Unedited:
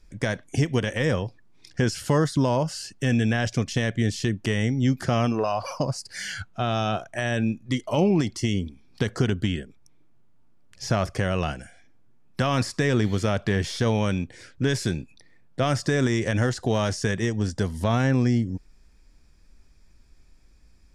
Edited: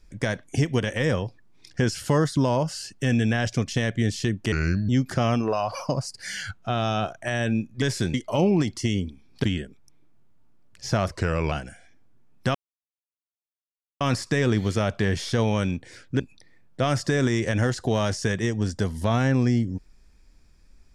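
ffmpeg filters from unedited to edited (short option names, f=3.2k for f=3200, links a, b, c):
-filter_complex "[0:a]asplit=10[a][b][c][d][e][f][g][h][i][j];[a]atrim=end=4.524[k];[b]atrim=start=4.52:end=4.8,asetpts=PTS-STARTPTS,asetrate=33516,aresample=44100,atrim=end_sample=16247,asetpts=PTS-STARTPTS[l];[c]atrim=start=4.796:end=7.732[m];[d]atrim=start=14.668:end=14.992[n];[e]atrim=start=7.728:end=9.032[o];[f]atrim=start=9.418:end=11.104[p];[g]atrim=start=11.1:end=11.45,asetpts=PTS-STARTPTS,asetrate=38808,aresample=44100[q];[h]atrim=start=11.446:end=12.48,asetpts=PTS-STARTPTS,afade=t=out:st=1.03:d=0.004:c=hsin,apad=pad_dur=1.46[r];[i]atrim=start=12.48:end=14.672,asetpts=PTS-STARTPTS,afade=t=in:d=0.004:c=hsin[s];[j]atrim=start=14.988[t];[k][l]acrossfade=d=0.004:c1=hsin:c2=hsin[u];[u][m]acrossfade=d=0.004:c1=hsin:c2=hsin[v];[v][n]acrossfade=d=0.004:c1=hsin:c2=hsin[w];[w][o]acrossfade=d=0.004:c1=hsin:c2=hsin[x];[x][p]acrossfade=d=0.004:c1=hsin:c2=hsin[y];[y][q]acrossfade=d=0.004:c1=hsin:c2=hsin[z];[r][s]concat=n=2:v=0:a=1[aa];[z][aa]acrossfade=d=0.004:c1=hsin:c2=hsin[ab];[ab][t]acrossfade=d=0.004:c1=hsin:c2=hsin"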